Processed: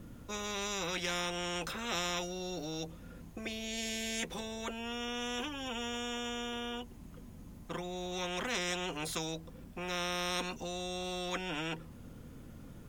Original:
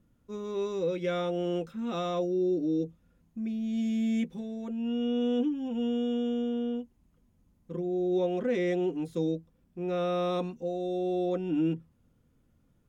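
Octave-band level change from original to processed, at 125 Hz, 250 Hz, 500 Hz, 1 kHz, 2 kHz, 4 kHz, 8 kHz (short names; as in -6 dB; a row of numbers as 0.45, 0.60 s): -6.5 dB, -12.5 dB, -10.5 dB, -0.5 dB, +7.5 dB, +8.5 dB, n/a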